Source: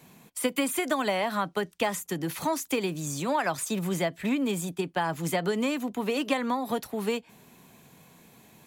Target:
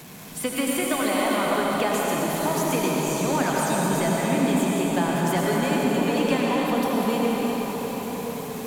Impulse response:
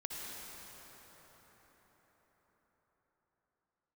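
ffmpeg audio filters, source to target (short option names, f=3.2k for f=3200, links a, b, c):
-filter_complex "[0:a]aeval=exprs='val(0)+0.5*0.0133*sgn(val(0))':c=same[a];[1:a]atrim=start_sample=2205,asetrate=32634,aresample=44100[b];[a][b]afir=irnorm=-1:irlink=0,volume=1.5dB"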